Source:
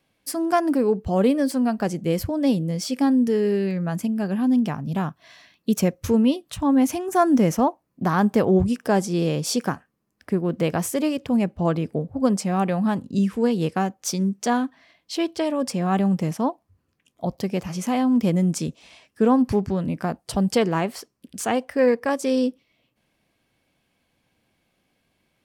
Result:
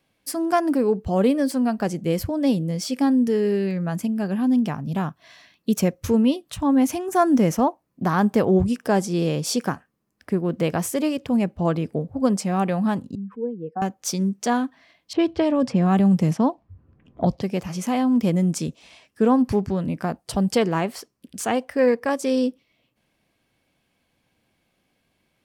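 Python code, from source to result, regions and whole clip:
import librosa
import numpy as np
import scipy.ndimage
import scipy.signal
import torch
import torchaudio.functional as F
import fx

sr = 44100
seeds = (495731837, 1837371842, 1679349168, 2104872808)

y = fx.chain(x, sr, fx.spec_expand(power=2.1),
    fx.bandpass_q(hz=1100.0, q=0.69), at=(13.15, 13.82))
y = fx.chain(y, sr, fx.low_shelf(hz=220.0, db=9.0),
    fx.env_lowpass(base_hz=990.0, full_db=-14.0),
    fx.band_squash(depth_pct=70), at=(15.13, 17.42))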